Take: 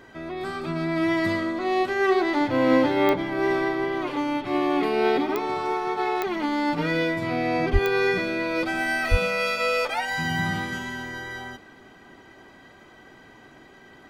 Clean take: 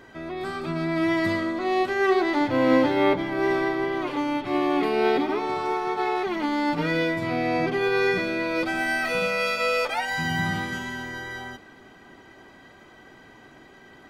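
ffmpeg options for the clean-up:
-filter_complex "[0:a]adeclick=t=4,asplit=3[s0][s1][s2];[s0]afade=t=out:st=7.72:d=0.02[s3];[s1]highpass=f=140:w=0.5412,highpass=f=140:w=1.3066,afade=t=in:st=7.72:d=0.02,afade=t=out:st=7.84:d=0.02[s4];[s2]afade=t=in:st=7.84:d=0.02[s5];[s3][s4][s5]amix=inputs=3:normalize=0,asplit=3[s6][s7][s8];[s6]afade=t=out:st=9.1:d=0.02[s9];[s7]highpass=f=140:w=0.5412,highpass=f=140:w=1.3066,afade=t=in:st=9.1:d=0.02,afade=t=out:st=9.22:d=0.02[s10];[s8]afade=t=in:st=9.22:d=0.02[s11];[s9][s10][s11]amix=inputs=3:normalize=0"

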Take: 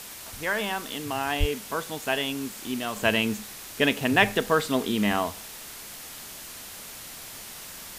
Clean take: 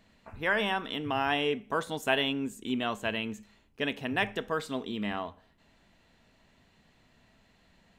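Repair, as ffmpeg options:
-filter_complex "[0:a]asplit=3[s0][s1][s2];[s0]afade=t=out:st=1.39:d=0.02[s3];[s1]highpass=f=140:w=0.5412,highpass=f=140:w=1.3066,afade=t=in:st=1.39:d=0.02,afade=t=out:st=1.51:d=0.02[s4];[s2]afade=t=in:st=1.51:d=0.02[s5];[s3][s4][s5]amix=inputs=3:normalize=0,afwtdn=0.01,asetnsamples=n=441:p=0,asendcmd='2.96 volume volume -9dB',volume=1"

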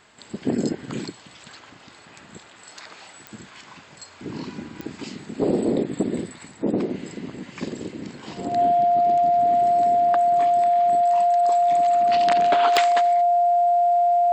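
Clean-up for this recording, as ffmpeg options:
-af "adeclick=t=4,bandreject=f=700:w=30"

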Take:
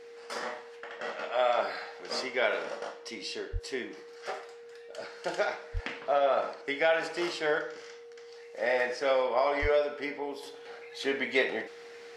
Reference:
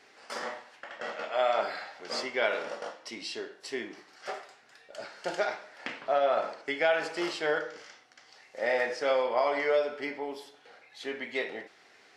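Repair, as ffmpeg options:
-filter_complex "[0:a]bandreject=f=470:w=30,asplit=3[s0][s1][s2];[s0]afade=t=out:st=3.52:d=0.02[s3];[s1]highpass=f=140:w=0.5412,highpass=f=140:w=1.3066,afade=t=in:st=3.52:d=0.02,afade=t=out:st=3.64:d=0.02[s4];[s2]afade=t=in:st=3.64:d=0.02[s5];[s3][s4][s5]amix=inputs=3:normalize=0,asplit=3[s6][s7][s8];[s6]afade=t=out:st=5.73:d=0.02[s9];[s7]highpass=f=140:w=0.5412,highpass=f=140:w=1.3066,afade=t=in:st=5.73:d=0.02,afade=t=out:st=5.85:d=0.02[s10];[s8]afade=t=in:st=5.85:d=0.02[s11];[s9][s10][s11]amix=inputs=3:normalize=0,asplit=3[s12][s13][s14];[s12]afade=t=out:st=9.61:d=0.02[s15];[s13]highpass=f=140:w=0.5412,highpass=f=140:w=1.3066,afade=t=in:st=9.61:d=0.02,afade=t=out:st=9.73:d=0.02[s16];[s14]afade=t=in:st=9.73:d=0.02[s17];[s15][s16][s17]amix=inputs=3:normalize=0,asetnsamples=n=441:p=0,asendcmd='10.43 volume volume -6dB',volume=1"

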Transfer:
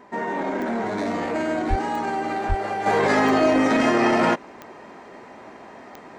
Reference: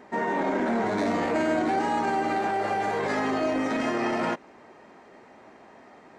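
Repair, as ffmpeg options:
-filter_complex "[0:a]adeclick=t=4,bandreject=f=1000:w=30,asplit=3[s0][s1][s2];[s0]afade=t=out:st=1.69:d=0.02[s3];[s1]highpass=f=140:w=0.5412,highpass=f=140:w=1.3066,afade=t=in:st=1.69:d=0.02,afade=t=out:st=1.81:d=0.02[s4];[s2]afade=t=in:st=1.81:d=0.02[s5];[s3][s4][s5]amix=inputs=3:normalize=0,asplit=3[s6][s7][s8];[s6]afade=t=out:st=2.48:d=0.02[s9];[s7]highpass=f=140:w=0.5412,highpass=f=140:w=1.3066,afade=t=in:st=2.48:d=0.02,afade=t=out:st=2.6:d=0.02[s10];[s8]afade=t=in:st=2.6:d=0.02[s11];[s9][s10][s11]amix=inputs=3:normalize=0,asetnsamples=n=441:p=0,asendcmd='2.86 volume volume -8dB',volume=1"

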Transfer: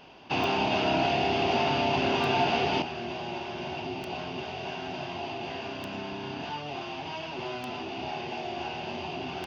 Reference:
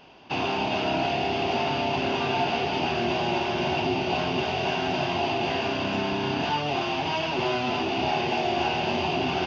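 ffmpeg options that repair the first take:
-af "adeclick=t=4,asetnsamples=n=441:p=0,asendcmd='2.82 volume volume 9.5dB',volume=1"

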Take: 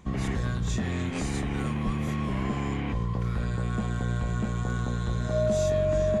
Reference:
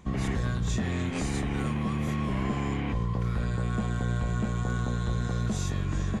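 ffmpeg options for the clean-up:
-filter_complex "[0:a]bandreject=f=620:w=30,asplit=3[s0][s1][s2];[s0]afade=t=out:st=1.85:d=0.02[s3];[s1]highpass=f=140:w=0.5412,highpass=f=140:w=1.3066,afade=t=in:st=1.85:d=0.02,afade=t=out:st=1.97:d=0.02[s4];[s2]afade=t=in:st=1.97:d=0.02[s5];[s3][s4][s5]amix=inputs=3:normalize=0"

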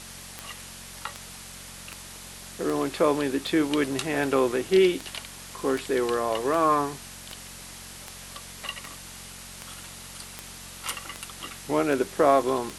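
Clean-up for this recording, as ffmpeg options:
-af "adeclick=t=4,bandreject=f=45.4:t=h:w=4,bandreject=f=90.8:t=h:w=4,bandreject=f=136.2:t=h:w=4,bandreject=f=181.6:t=h:w=4,bandreject=f=227:t=h:w=4,afwtdn=0.0089"

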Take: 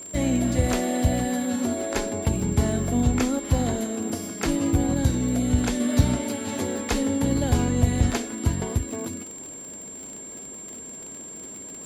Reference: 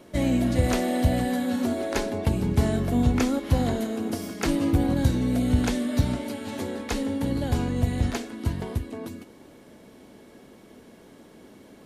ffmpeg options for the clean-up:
-af "adeclick=t=4,bandreject=f=7400:w=30,asetnsamples=n=441:p=0,asendcmd='5.8 volume volume -3.5dB',volume=1"

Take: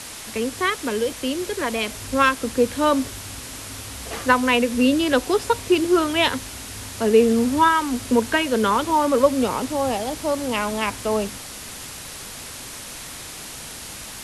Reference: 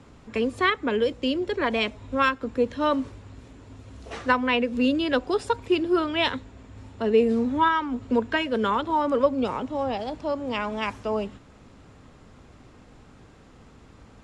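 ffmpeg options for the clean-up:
-af "afwtdn=0.02,asetnsamples=n=441:p=0,asendcmd='1.89 volume volume -4.5dB',volume=1"

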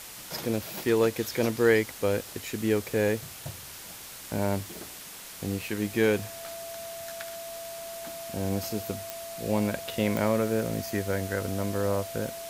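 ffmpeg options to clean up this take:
-af "adeclick=t=4,bandreject=f=670:w=30,afwtdn=0.0079"

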